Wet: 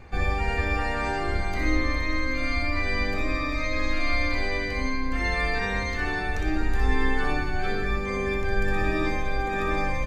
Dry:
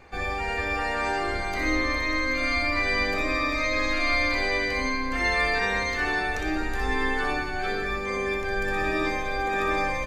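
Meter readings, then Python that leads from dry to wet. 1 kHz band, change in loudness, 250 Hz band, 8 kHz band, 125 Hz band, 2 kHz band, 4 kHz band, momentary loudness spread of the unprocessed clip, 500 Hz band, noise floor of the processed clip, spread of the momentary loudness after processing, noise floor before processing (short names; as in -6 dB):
-2.5 dB, -1.5 dB, +1.0 dB, -4.0 dB, +7.0 dB, -3.0 dB, -3.5 dB, 5 LU, -1.5 dB, -28 dBFS, 3 LU, -30 dBFS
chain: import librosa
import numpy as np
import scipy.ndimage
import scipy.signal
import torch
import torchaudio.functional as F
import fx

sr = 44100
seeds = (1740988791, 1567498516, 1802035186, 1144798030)

y = fx.bass_treble(x, sr, bass_db=10, treble_db=-1)
y = fx.rider(y, sr, range_db=10, speed_s=2.0)
y = F.gain(torch.from_numpy(y), -3.0).numpy()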